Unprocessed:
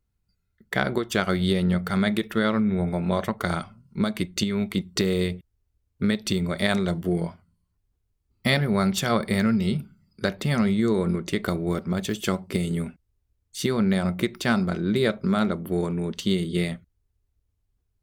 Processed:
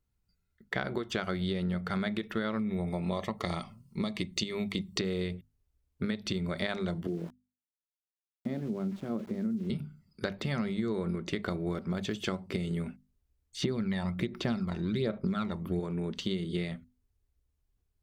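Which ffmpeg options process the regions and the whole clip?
-filter_complex "[0:a]asettb=1/sr,asplit=3[a][b][c];[a]atrim=end=2.594[d];[b]atrim=start=2.59:end=4.98,asetpts=PTS-STARTPTS,afade=t=in:d=0.004:c=qsin,afade=t=out:st=2.386:d=0.004:c=qsin,asuperstop=centerf=1500:order=4:qfactor=4.1,highshelf=f=4.5k:g=10[e];[c]atrim=start=4.976[f];[d][e]acrossfade=d=0.004:c1=hsin:c2=qsin[g];[g][f]acrossfade=d=0.004:c1=qsin:c2=hsin,asettb=1/sr,asplit=3[h][i][j];[h]atrim=end=7.074[k];[i]atrim=start=7.07:end=9.7,asetpts=PTS-STARTPTS,afade=t=in:d=0.004:c=qsin,afade=t=out:st=2.626:d=0.004:c=qsin,bandpass=f=270:t=q:w=2.1,aeval=exprs='val(0)*gte(abs(val(0)),0.00596)':c=same[l];[j]atrim=start=9.696[m];[k][l]acrossfade=d=0.004:c1=hsin:c2=qsin[n];[n][m]acrossfade=d=0.004:c1=qsin:c2=hsin,asettb=1/sr,asplit=3[o][p][q];[o]atrim=end=13.624[r];[p]atrim=start=13.62:end=15.8,asetpts=PTS-STARTPTS,afade=t=in:d=0.004:c=qsin,afade=t=out:st=2.176:d=0.004:c=qsin,bandreject=f=1.5k:w=28,aphaser=in_gain=1:out_gain=1:delay=1.1:decay=0.61:speed=1.3:type=sinusoidal[s];[q]atrim=start=15.796[t];[r][s]acrossfade=d=0.004:c1=hsin:c2=qsin[u];[u][t]acrossfade=d=0.004:c1=qsin:c2=hsin,acrossover=split=6000[v][w];[w]acompressor=threshold=-59dB:ratio=4:attack=1:release=60[x];[v][x]amix=inputs=2:normalize=0,bandreject=f=50:t=h:w=6,bandreject=f=100:t=h:w=6,bandreject=f=150:t=h:w=6,bandreject=f=200:t=h:w=6,bandreject=f=250:t=h:w=6,acompressor=threshold=-27dB:ratio=4,volume=-2.5dB"

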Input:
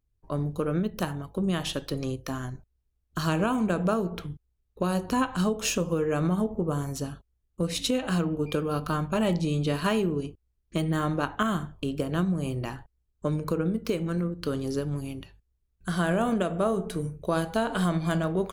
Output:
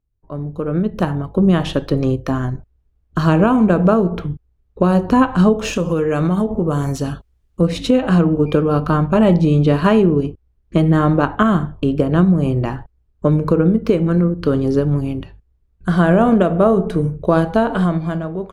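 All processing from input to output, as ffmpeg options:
-filter_complex "[0:a]asettb=1/sr,asplit=3[a][b][c];[a]atrim=end=5.734[d];[b]atrim=start=5.73:end=7.61,asetpts=PTS-STARTPTS,afade=t=in:d=0.004:c=qsin,afade=t=out:st=1.876:d=0.004:c=qsin,highshelf=f=2k:g=11.5,acompressor=threshold=-29dB:ratio=2.5:attack=3.2:release=140:knee=1:detection=peak[e];[c]atrim=start=7.606[f];[d][e]acrossfade=d=0.004:c1=hsin:c2=qsin[g];[g][f]acrossfade=d=0.004:c1=qsin:c2=hsin,lowpass=f=1.1k:p=1,dynaudnorm=f=100:g=17:m=12.5dB,volume=2dB"

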